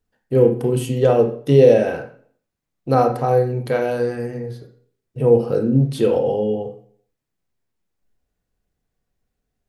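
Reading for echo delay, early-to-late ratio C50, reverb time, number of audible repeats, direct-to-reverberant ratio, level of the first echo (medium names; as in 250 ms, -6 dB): no echo, 8.0 dB, 0.55 s, no echo, 3.5 dB, no echo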